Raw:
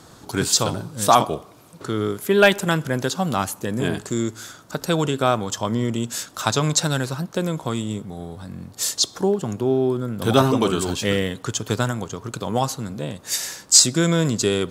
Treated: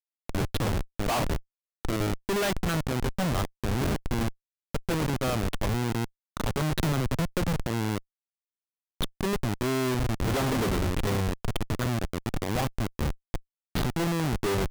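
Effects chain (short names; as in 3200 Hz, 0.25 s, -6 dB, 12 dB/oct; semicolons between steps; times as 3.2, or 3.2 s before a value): elliptic low-pass 3500 Hz, stop band 60 dB; Schmitt trigger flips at -24 dBFS; 6.79–7.53 three-band squash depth 100%; gain -2 dB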